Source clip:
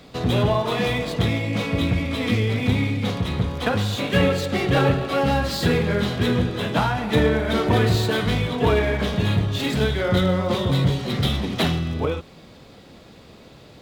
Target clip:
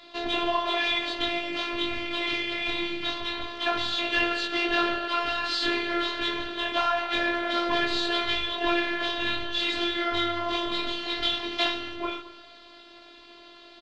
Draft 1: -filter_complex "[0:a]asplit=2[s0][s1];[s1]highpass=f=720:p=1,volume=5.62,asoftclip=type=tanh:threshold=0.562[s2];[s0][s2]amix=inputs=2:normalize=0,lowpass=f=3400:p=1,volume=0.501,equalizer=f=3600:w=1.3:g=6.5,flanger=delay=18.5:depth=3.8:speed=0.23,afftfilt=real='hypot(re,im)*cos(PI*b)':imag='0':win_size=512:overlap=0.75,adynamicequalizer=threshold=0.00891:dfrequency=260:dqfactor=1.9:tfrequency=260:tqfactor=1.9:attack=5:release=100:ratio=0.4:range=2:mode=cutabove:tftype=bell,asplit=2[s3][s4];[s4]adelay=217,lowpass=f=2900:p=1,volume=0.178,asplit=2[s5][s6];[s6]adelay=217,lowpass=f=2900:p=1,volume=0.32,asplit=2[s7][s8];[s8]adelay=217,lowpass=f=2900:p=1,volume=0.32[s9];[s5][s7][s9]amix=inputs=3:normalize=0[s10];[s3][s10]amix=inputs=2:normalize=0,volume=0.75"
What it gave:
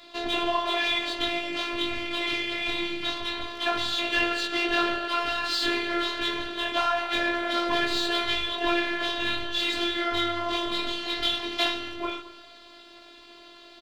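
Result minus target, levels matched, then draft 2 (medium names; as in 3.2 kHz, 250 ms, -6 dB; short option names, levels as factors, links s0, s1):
8 kHz band +4.5 dB
-filter_complex "[0:a]asplit=2[s0][s1];[s1]highpass=f=720:p=1,volume=5.62,asoftclip=type=tanh:threshold=0.562[s2];[s0][s2]amix=inputs=2:normalize=0,lowpass=f=3400:p=1,volume=0.501,equalizer=f=3600:w=1.3:g=6.5,flanger=delay=18.5:depth=3.8:speed=0.23,afftfilt=real='hypot(re,im)*cos(PI*b)':imag='0':win_size=512:overlap=0.75,adynamicequalizer=threshold=0.00891:dfrequency=260:dqfactor=1.9:tfrequency=260:tqfactor=1.9:attack=5:release=100:ratio=0.4:range=2:mode=cutabove:tftype=bell,lowpass=5700,asplit=2[s3][s4];[s4]adelay=217,lowpass=f=2900:p=1,volume=0.178,asplit=2[s5][s6];[s6]adelay=217,lowpass=f=2900:p=1,volume=0.32,asplit=2[s7][s8];[s8]adelay=217,lowpass=f=2900:p=1,volume=0.32[s9];[s5][s7][s9]amix=inputs=3:normalize=0[s10];[s3][s10]amix=inputs=2:normalize=0,volume=0.75"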